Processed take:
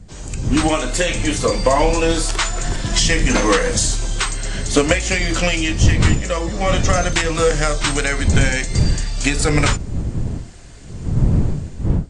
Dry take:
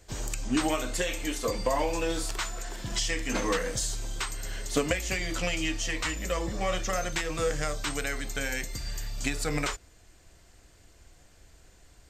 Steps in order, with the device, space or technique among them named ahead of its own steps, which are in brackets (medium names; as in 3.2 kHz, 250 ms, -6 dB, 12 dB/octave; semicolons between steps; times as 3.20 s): smartphone video outdoors (wind noise 120 Hz -32 dBFS; level rider gain up to 15 dB; AAC 48 kbps 22.05 kHz)